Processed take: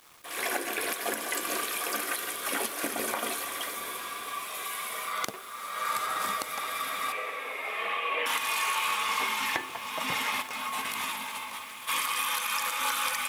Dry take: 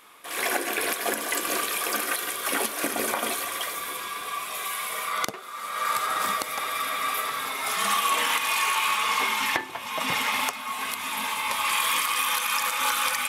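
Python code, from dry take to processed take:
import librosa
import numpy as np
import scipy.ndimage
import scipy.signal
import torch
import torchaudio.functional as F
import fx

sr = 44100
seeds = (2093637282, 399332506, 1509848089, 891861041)

p1 = fx.over_compress(x, sr, threshold_db=-32.0, ratio=-0.5, at=(10.41, 11.87), fade=0.02)
p2 = fx.quant_dither(p1, sr, seeds[0], bits=8, dither='none')
p3 = fx.cabinet(p2, sr, low_hz=300.0, low_slope=24, high_hz=2800.0, hz=(510.0, 940.0, 1400.0, 2400.0), db=(10, -5, -8, 6), at=(7.12, 8.26))
p4 = p3 + fx.echo_diffused(p3, sr, ms=764, feedback_pct=45, wet_db=-13.5, dry=0)
y = p4 * 10.0 ** (-4.5 / 20.0)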